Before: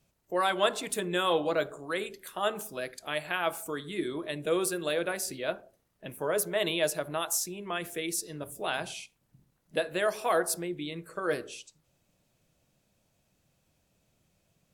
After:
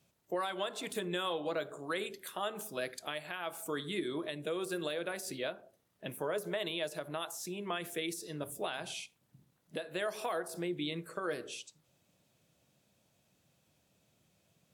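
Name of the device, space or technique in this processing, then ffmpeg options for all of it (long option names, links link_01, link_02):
broadcast voice chain: -af "highpass=93,deesser=0.65,acompressor=threshold=-30dB:ratio=5,equalizer=frequency=3500:width_type=o:width=0.37:gain=3,alimiter=level_in=0.5dB:limit=-24dB:level=0:latency=1:release=480,volume=-0.5dB"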